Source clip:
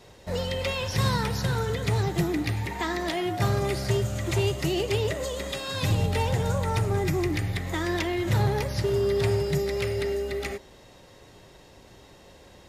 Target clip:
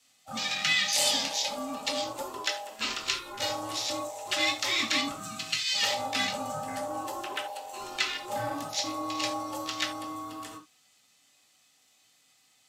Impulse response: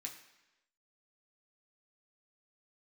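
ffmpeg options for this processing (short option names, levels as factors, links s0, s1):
-filter_complex "[0:a]aexciter=amount=6.7:drive=3.6:freq=2200,afwtdn=0.0631,aeval=exprs='val(0)*sin(2*PI*710*n/s)':c=same[s0];[1:a]atrim=start_sample=2205,atrim=end_sample=3969[s1];[s0][s1]afir=irnorm=-1:irlink=0"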